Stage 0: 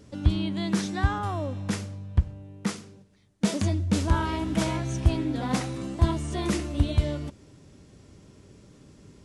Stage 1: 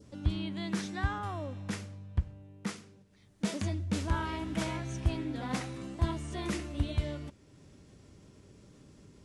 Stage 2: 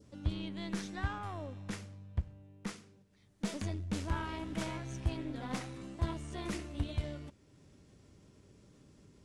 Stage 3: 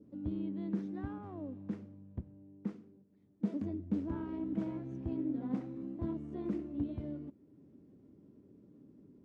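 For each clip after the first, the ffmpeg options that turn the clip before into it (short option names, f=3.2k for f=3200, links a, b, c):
-af "acompressor=mode=upward:threshold=-41dB:ratio=2.5,adynamicequalizer=threshold=0.00631:dfrequency=2000:dqfactor=0.94:tfrequency=2000:tqfactor=0.94:attack=5:release=100:ratio=0.375:range=2:mode=boostabove:tftype=bell,volume=-8dB"
-af "aeval=exprs='0.15*(cos(1*acos(clip(val(0)/0.15,-1,1)))-cos(1*PI/2))+0.0075*(cos(8*acos(clip(val(0)/0.15,-1,1)))-cos(8*PI/2))':c=same,volume=-4.5dB"
-af "bandpass=f=270:t=q:w=2.1:csg=0,volume=7dB"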